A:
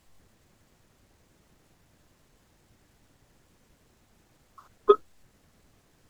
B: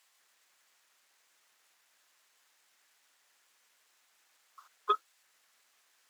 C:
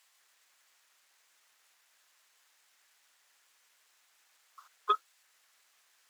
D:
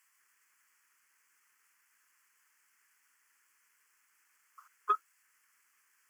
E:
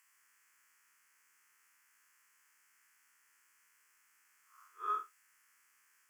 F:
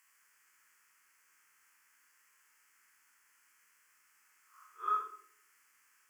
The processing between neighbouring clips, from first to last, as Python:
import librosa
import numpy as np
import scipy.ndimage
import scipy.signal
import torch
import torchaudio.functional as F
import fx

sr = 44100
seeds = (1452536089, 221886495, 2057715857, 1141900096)

y1 = scipy.signal.sosfilt(scipy.signal.butter(2, 1300.0, 'highpass', fs=sr, output='sos'), x)
y2 = fx.low_shelf(y1, sr, hz=350.0, db=-9.0)
y2 = y2 * librosa.db_to_amplitude(1.5)
y3 = fx.fixed_phaser(y2, sr, hz=1600.0, stages=4)
y4 = fx.spec_blur(y3, sr, span_ms=128.0)
y4 = y4 * librosa.db_to_amplitude(2.5)
y5 = fx.room_shoebox(y4, sr, seeds[0], volume_m3=110.0, walls='mixed', distance_m=0.61)